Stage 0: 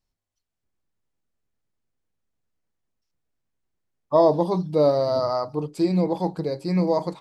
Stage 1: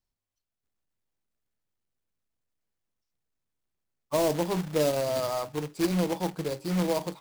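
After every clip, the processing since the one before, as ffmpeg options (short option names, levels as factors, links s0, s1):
-filter_complex "[0:a]acrusher=bits=2:mode=log:mix=0:aa=0.000001,acrossover=split=460|3000[s0][s1][s2];[s1]acompressor=threshold=0.0891:ratio=6[s3];[s0][s3][s2]amix=inputs=3:normalize=0,volume=0.531"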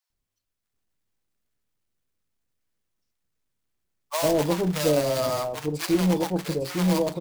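-filter_complex "[0:a]acrossover=split=730[s0][s1];[s0]adelay=100[s2];[s2][s1]amix=inputs=2:normalize=0,volume=1.78"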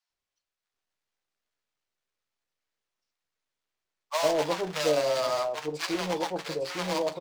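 -filter_complex "[0:a]acrossover=split=430 7000:gain=0.178 1 0.2[s0][s1][s2];[s0][s1][s2]amix=inputs=3:normalize=0,asplit=2[s3][s4];[s4]adelay=13,volume=0.282[s5];[s3][s5]amix=inputs=2:normalize=0"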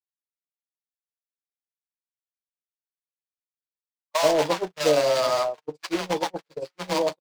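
-af "agate=range=0.00251:threshold=0.0355:ratio=16:detection=peak,dynaudnorm=f=140:g=3:m=1.78"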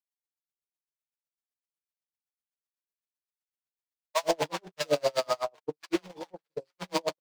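-af "aeval=exprs='val(0)*pow(10,-37*(0.5-0.5*cos(2*PI*7.9*n/s))/20)':c=same"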